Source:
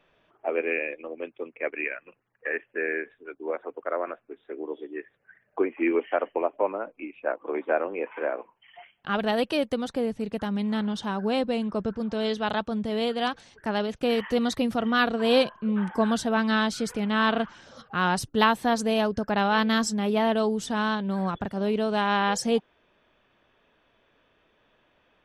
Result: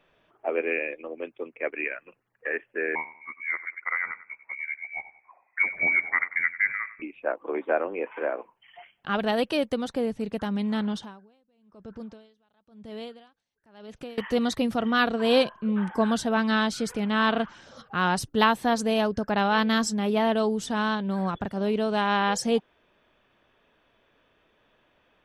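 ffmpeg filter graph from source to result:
ffmpeg -i in.wav -filter_complex "[0:a]asettb=1/sr,asplit=3[link_01][link_02][link_03];[link_01]atrim=end=2.954[link_04];[link_02]atrim=start=2.95:end=7.02,asetpts=PTS-STARTPTS,afade=type=in:duration=0.004:curve=qsin,afade=type=out:start_time=4.066:duration=0.004:curve=qsin,aecho=1:1:95|190|285:0.178|0.0622|0.0218,atrim=end_sample=179487,lowpass=frequency=2200:width_type=q:width=0.5098,lowpass=frequency=2200:width_type=q:width=0.6013,lowpass=frequency=2200:width_type=q:width=0.9,lowpass=frequency=2200:width_type=q:width=2.563,afreqshift=-2600[link_05];[link_03]atrim=start=7.016[link_06];[link_04][link_05]acrossfade=duration=0.004:curve1=hsin:curve2=qsin[link_07];[link_07][link_06]acrossfade=duration=0.004:curve1=qsin:curve2=hsin,asettb=1/sr,asplit=3[link_08][link_09][link_10];[link_08]atrim=end=10.984[link_11];[link_09]atrim=start=10.98:end=14.18,asetpts=PTS-STARTPTS,afade=type=in:duration=0.004:curve=qsin,afade=type=out:start_time=3.196:duration=0.004:curve=qsin,acompressor=threshold=-41dB:ratio=2:attack=3.2:release=140:knee=1:detection=peak,aeval=exprs='val(0)*pow(10,-33*(0.5-0.5*cos(2*PI*1*n/s))/20)':channel_layout=same[link_12];[link_10]atrim=start=14.176[link_13];[link_11][link_12]acrossfade=duration=0.004:curve1=hsin:curve2=qsin[link_14];[link_14][link_13]acrossfade=duration=0.004:curve1=qsin:curve2=hsin" out.wav

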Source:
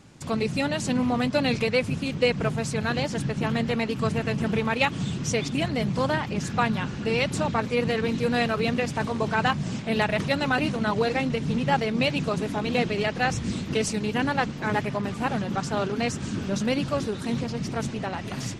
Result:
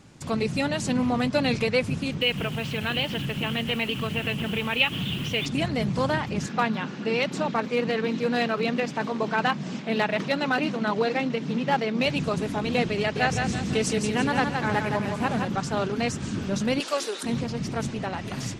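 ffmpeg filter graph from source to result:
ffmpeg -i in.wav -filter_complex "[0:a]asettb=1/sr,asplit=3[link_01][link_02][link_03];[link_01]atrim=end=2.214[link_04];[link_02]atrim=start=2.21:end=5.46,asetpts=PTS-STARTPTS,afade=type=in:duration=0.004:curve=qsin,afade=type=out:start_time=3.246:duration=0.004:curve=qsin,acompressor=threshold=-26dB:ratio=3:attack=3.2:release=140:knee=1:detection=peak,lowpass=frequency=3000:width_type=q:width=6.4,acrusher=bits=6:mix=0:aa=0.5[link_05];[link_03]atrim=start=5.456[link_06];[link_04][link_05]acrossfade=duration=0.004:curve1=hsin:curve2=qsin[link_07];[link_07][link_06]acrossfade=duration=0.004:curve1=qsin:curve2=hsin,asettb=1/sr,asplit=3[link_08][link_09][link_10];[link_08]atrim=end=6.464[link_11];[link_09]atrim=start=6.46:end=12.06,asetpts=PTS-STARTPTS,afade=type=in:duration=0.004:curve=qsin,afade=type=out:start_time=5.596:duration=0.004:curve=qsin,equalizer=frequency=10000:width_type=o:width=0.75:gain=-13.5,aeval=exprs='clip(val(0),-1,0.141)':channel_layout=same,highpass=frequency=170:width=0.5412,highpass=frequency=170:width=1.3066[link_12];[link_10]atrim=start=12.056[link_13];[link_11][link_12]acrossfade=duration=0.004:curve1=hsin:curve2=qsin[link_14];[link_14][link_13]acrossfade=duration=0.004:curve1=qsin:curve2=hsin,asettb=1/sr,asplit=3[link_15][link_16][link_17];[link_15]atrim=end=12.994[link_18];[link_16]atrim=start=12.99:end=15.48,asetpts=PTS-STARTPTS,afade=type=in:duration=0.004:curve=qsin,afade=type=out:start_time=2.486:duration=0.004:curve=qsin,highpass=45,aecho=1:1:167|334|501|668|835:0.562|0.231|0.0945|0.0388|0.0159,atrim=end_sample=109809[link_19];[link_17]atrim=start=15.476[link_20];[link_18][link_19]acrossfade=duration=0.004:curve1=hsin:curve2=qsin[link_21];[link_21][link_20]acrossfade=duration=0.004:curve1=qsin:curve2=hsin,asettb=1/sr,asplit=3[link_22][link_23][link_24];[link_22]atrim=end=16.804[link_25];[link_23]atrim=start=16.8:end=17.23,asetpts=PTS-STARTPTS,afade=type=in:duration=0.004:curve=qsin,afade=type=out:start_time=0.426:duration=0.004:curve=qsin,highpass=frequency=360:width=0.5412,highpass=frequency=360:width=1.3066,highshelf=frequency=2400:gain=10[link_26];[link_24]atrim=start=17.226[link_27];[link_25][link_26]acrossfade=duration=0.004:curve1=hsin:curve2=qsin[link_28];[link_28][link_27]acrossfade=duration=0.004:curve1=qsin:curve2=hsin" out.wav

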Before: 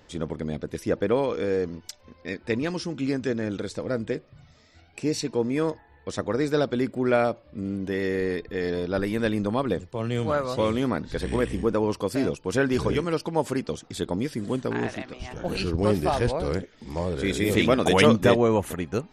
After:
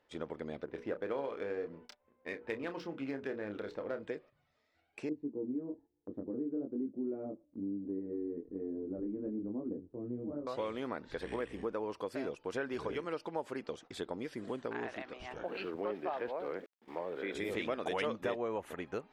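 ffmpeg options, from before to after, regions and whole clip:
ffmpeg -i in.wav -filter_complex "[0:a]asettb=1/sr,asplit=3[link_01][link_02][link_03];[link_01]atrim=end=0.654[link_04];[link_02]atrim=start=0.65:end=4.03,asetpts=PTS-STARTPTS,afade=type=in:duration=0.004:curve=qsin,afade=type=out:start_time=3.376:duration=0.004:curve=qsin,bandreject=frequency=60:width_type=h:width=6,bandreject=frequency=120:width_type=h:width=6,bandreject=frequency=180:width_type=h:width=6,bandreject=frequency=240:width_type=h:width=6,bandreject=frequency=300:width_type=h:width=6,bandreject=frequency=360:width_type=h:width=6,bandreject=frequency=420:width_type=h:width=6,bandreject=frequency=480:width_type=h:width=6,adynamicsmooth=sensitivity=6:basefreq=1900,asplit=2[link_05][link_06];[link_06]adelay=29,volume=-9dB[link_07];[link_05][link_07]amix=inputs=2:normalize=0,atrim=end_sample=149058[link_08];[link_03]atrim=start=4.026[link_09];[link_04][link_08]acrossfade=duration=0.004:curve1=hsin:curve2=qsin[link_10];[link_10][link_09]acrossfade=duration=0.004:curve1=qsin:curve2=hsin,asettb=1/sr,asplit=3[link_11][link_12][link_13];[link_11]atrim=end=5.094[link_14];[link_12]atrim=start=5.09:end=10.47,asetpts=PTS-STARTPTS,afade=type=in:duration=0.004:curve=qsin,afade=type=out:start_time=5.376:duration=0.004:curve=qsin,lowpass=frequency=290:width_type=q:width=3.5,flanger=delay=19.5:depth=4.8:speed=1.1[link_15];[link_13]atrim=start=10.466[link_16];[link_14][link_15]acrossfade=duration=0.004:curve1=hsin:curve2=qsin[link_17];[link_17][link_16]acrossfade=duration=0.004:curve1=qsin:curve2=hsin,asettb=1/sr,asplit=3[link_18][link_19][link_20];[link_18]atrim=end=15.444[link_21];[link_19]atrim=start=15.44:end=17.35,asetpts=PTS-STARTPTS,afade=type=in:duration=0.004:curve=qsin,afade=type=out:start_time=1.906:duration=0.004:curve=qsin,acrossover=split=180 3700:gain=0.112 1 0.0794[link_22][link_23][link_24];[link_22][link_23][link_24]amix=inputs=3:normalize=0,aeval=exprs='val(0)*gte(abs(val(0)),0.00398)':channel_layout=same[link_25];[link_20]atrim=start=17.346[link_26];[link_21][link_25]acrossfade=duration=0.004:curve1=hsin:curve2=qsin[link_27];[link_27][link_26]acrossfade=duration=0.004:curve1=qsin:curve2=hsin,agate=range=-12dB:threshold=-43dB:ratio=16:detection=peak,bass=frequency=250:gain=-14,treble=frequency=4000:gain=-12,acompressor=threshold=-33dB:ratio=2.5,volume=-4dB" out.wav

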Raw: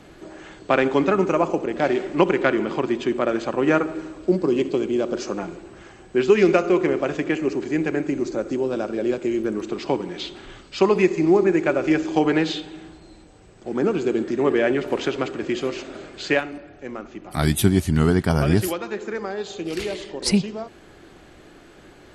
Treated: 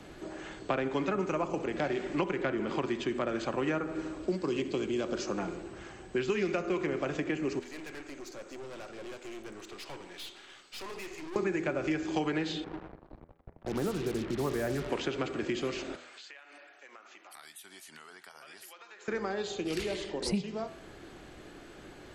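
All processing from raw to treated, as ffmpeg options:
ffmpeg -i in.wav -filter_complex "[0:a]asettb=1/sr,asplit=3[link_01][link_02][link_03];[link_01]atrim=end=7.594[link_04];[link_02]atrim=start=7.59:end=11.36,asetpts=PTS-STARTPTS,afade=type=in:duration=0.004:curve=qsin,afade=type=out:start_time=3.766:duration=0.004:curve=qsin,highpass=frequency=1500:poles=1,aeval=exprs='(tanh(79.4*val(0)+0.6)-tanh(0.6))/79.4':channel_layout=same[link_05];[link_03]atrim=start=11.356[link_06];[link_04][link_05]acrossfade=duration=0.004:curve1=hsin:curve2=qsin[link_07];[link_07][link_06]acrossfade=duration=0.004:curve1=qsin:curve2=hsin,asettb=1/sr,asplit=3[link_08][link_09][link_10];[link_08]atrim=end=12.644[link_11];[link_09]atrim=start=12.64:end=14.89,asetpts=PTS-STARTPTS,afade=type=in:duration=0.004:curve=qsin,afade=type=out:start_time=2.246:duration=0.004:curve=qsin,lowpass=1100,asubboost=boost=10.5:cutoff=120,acrusher=bits=5:mix=0:aa=0.5[link_12];[link_10]atrim=start=14.886[link_13];[link_11][link_12]acrossfade=duration=0.004:curve1=hsin:curve2=qsin[link_14];[link_14][link_13]acrossfade=duration=0.004:curve1=qsin:curve2=hsin,asettb=1/sr,asplit=3[link_15][link_16][link_17];[link_15]atrim=end=15.954[link_18];[link_16]atrim=start=15.95:end=19.08,asetpts=PTS-STARTPTS,afade=type=in:duration=0.004:curve=qsin,afade=type=out:start_time=3.126:duration=0.004:curve=qsin,highpass=1100,acompressor=threshold=-45dB:ratio=8:attack=3.2:release=140:knee=1:detection=peak[link_19];[link_17]atrim=start=19.076[link_20];[link_18][link_19]acrossfade=duration=0.004:curve1=hsin:curve2=qsin[link_21];[link_21][link_20]acrossfade=duration=0.004:curve1=qsin:curve2=hsin,bandreject=frequency=82.52:width_type=h:width=4,bandreject=frequency=165.04:width_type=h:width=4,bandreject=frequency=247.56:width_type=h:width=4,bandreject=frequency=330.08:width_type=h:width=4,bandreject=frequency=412.6:width_type=h:width=4,bandreject=frequency=495.12:width_type=h:width=4,bandreject=frequency=577.64:width_type=h:width=4,bandreject=frequency=660.16:width_type=h:width=4,bandreject=frequency=742.68:width_type=h:width=4,bandreject=frequency=825.2:width_type=h:width=4,bandreject=frequency=907.72:width_type=h:width=4,bandreject=frequency=990.24:width_type=h:width=4,bandreject=frequency=1072.76:width_type=h:width=4,bandreject=frequency=1155.28:width_type=h:width=4,bandreject=frequency=1237.8:width_type=h:width=4,bandreject=frequency=1320.32:width_type=h:width=4,bandreject=frequency=1402.84:width_type=h:width=4,bandreject=frequency=1485.36:width_type=h:width=4,bandreject=frequency=1567.88:width_type=h:width=4,bandreject=frequency=1650.4:width_type=h:width=4,bandreject=frequency=1732.92:width_type=h:width=4,bandreject=frequency=1815.44:width_type=h:width=4,bandreject=frequency=1897.96:width_type=h:width=4,bandreject=frequency=1980.48:width_type=h:width=4,bandreject=frequency=2063:width_type=h:width=4,bandreject=frequency=2145.52:width_type=h:width=4,bandreject=frequency=2228.04:width_type=h:width=4,bandreject=frequency=2310.56:width_type=h:width=4,bandreject=frequency=2393.08:width_type=h:width=4,acrossover=split=170|1100[link_22][link_23][link_24];[link_22]acompressor=threshold=-39dB:ratio=4[link_25];[link_23]acompressor=threshold=-30dB:ratio=4[link_26];[link_24]acompressor=threshold=-36dB:ratio=4[link_27];[link_25][link_26][link_27]amix=inputs=3:normalize=0,volume=-2dB" out.wav

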